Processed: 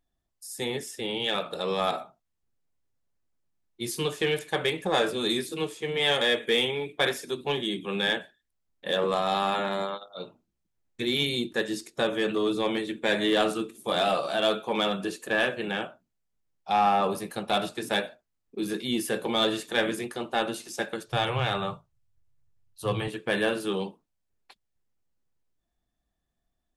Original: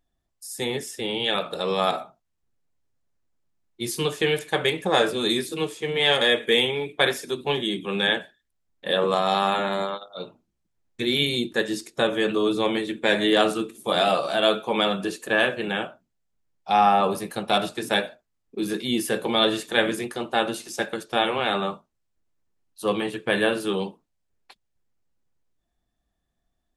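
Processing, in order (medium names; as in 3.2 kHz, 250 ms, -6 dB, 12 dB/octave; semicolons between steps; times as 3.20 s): 21.06–23.08 s: resonant low shelf 170 Hz +10.5 dB, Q 3; in parallel at -4.5 dB: hard clipper -17 dBFS, distortion -12 dB; on the sum: trim -7.5 dB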